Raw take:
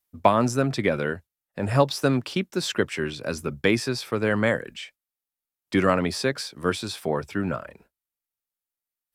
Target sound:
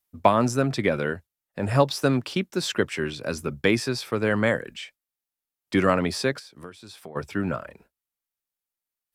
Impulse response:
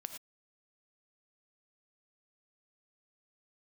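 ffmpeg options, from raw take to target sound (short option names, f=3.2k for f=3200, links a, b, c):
-filter_complex "[0:a]asplit=3[a][b][c];[a]afade=t=out:st=6.38:d=0.02[d];[b]acompressor=threshold=-40dB:ratio=6,afade=t=in:st=6.38:d=0.02,afade=t=out:st=7.15:d=0.02[e];[c]afade=t=in:st=7.15:d=0.02[f];[d][e][f]amix=inputs=3:normalize=0"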